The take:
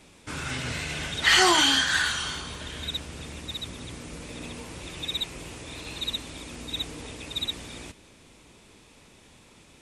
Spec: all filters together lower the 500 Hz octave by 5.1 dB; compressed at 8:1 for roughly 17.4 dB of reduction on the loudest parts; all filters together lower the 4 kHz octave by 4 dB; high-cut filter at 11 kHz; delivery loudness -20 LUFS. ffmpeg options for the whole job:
-af "lowpass=11000,equalizer=f=500:t=o:g=-8.5,equalizer=f=4000:t=o:g=-5,acompressor=threshold=0.0158:ratio=8,volume=10"

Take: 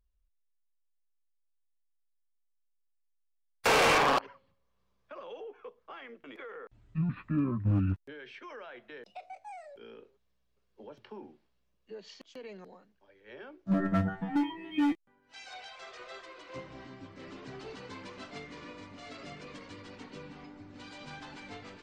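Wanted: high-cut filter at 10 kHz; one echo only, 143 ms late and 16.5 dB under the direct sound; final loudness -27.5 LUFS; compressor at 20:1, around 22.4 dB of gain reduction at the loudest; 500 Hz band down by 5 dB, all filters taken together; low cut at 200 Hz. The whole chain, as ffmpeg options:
-af "highpass=200,lowpass=10000,equalizer=f=500:t=o:g=-6,acompressor=threshold=0.00562:ratio=20,aecho=1:1:143:0.15,volume=14.1"

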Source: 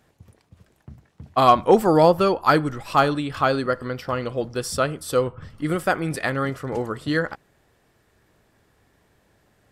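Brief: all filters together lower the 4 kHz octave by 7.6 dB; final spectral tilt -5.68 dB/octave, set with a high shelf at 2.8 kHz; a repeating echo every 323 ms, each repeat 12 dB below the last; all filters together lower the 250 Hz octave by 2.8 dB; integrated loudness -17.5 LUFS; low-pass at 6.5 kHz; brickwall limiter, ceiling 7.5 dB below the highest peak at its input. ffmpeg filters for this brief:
-af "lowpass=6500,equalizer=f=250:t=o:g=-4,highshelf=f=2800:g=-6.5,equalizer=f=4000:t=o:g=-4,alimiter=limit=0.251:level=0:latency=1,aecho=1:1:323|646|969:0.251|0.0628|0.0157,volume=2.51"

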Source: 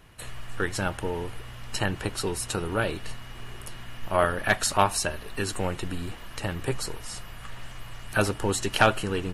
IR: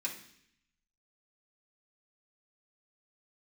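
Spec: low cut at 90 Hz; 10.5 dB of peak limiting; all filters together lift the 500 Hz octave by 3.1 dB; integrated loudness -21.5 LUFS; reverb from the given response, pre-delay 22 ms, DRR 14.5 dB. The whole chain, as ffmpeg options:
-filter_complex "[0:a]highpass=90,equalizer=f=500:t=o:g=4,alimiter=limit=0.178:level=0:latency=1,asplit=2[s0][s1];[1:a]atrim=start_sample=2205,adelay=22[s2];[s1][s2]afir=irnorm=-1:irlink=0,volume=0.15[s3];[s0][s3]amix=inputs=2:normalize=0,volume=2.66"

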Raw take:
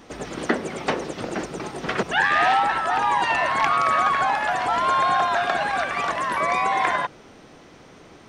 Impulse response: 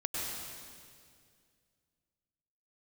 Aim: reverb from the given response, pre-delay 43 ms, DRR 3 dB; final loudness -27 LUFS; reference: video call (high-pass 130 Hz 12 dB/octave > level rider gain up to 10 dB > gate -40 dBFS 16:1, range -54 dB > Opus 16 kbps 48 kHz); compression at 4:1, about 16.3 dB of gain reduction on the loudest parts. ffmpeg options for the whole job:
-filter_complex "[0:a]acompressor=threshold=0.0158:ratio=4,asplit=2[s0][s1];[1:a]atrim=start_sample=2205,adelay=43[s2];[s1][s2]afir=irnorm=-1:irlink=0,volume=0.422[s3];[s0][s3]amix=inputs=2:normalize=0,highpass=130,dynaudnorm=m=3.16,agate=range=0.002:threshold=0.01:ratio=16,volume=2.37" -ar 48000 -c:a libopus -b:a 16k

